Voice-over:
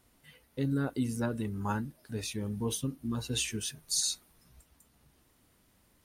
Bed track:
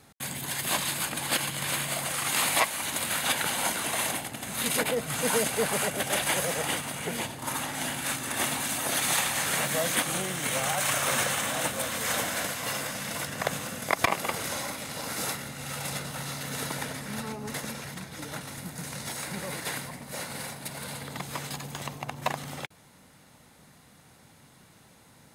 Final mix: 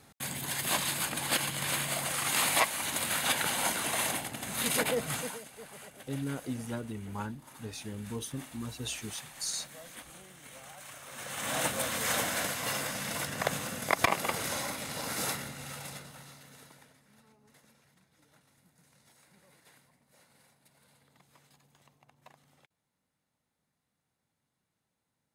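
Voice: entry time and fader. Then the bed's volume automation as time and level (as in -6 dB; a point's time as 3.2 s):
5.50 s, -5.0 dB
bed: 5.14 s -2 dB
5.41 s -21 dB
11.1 s -21 dB
11.54 s -1.5 dB
15.4 s -1.5 dB
17.02 s -27.5 dB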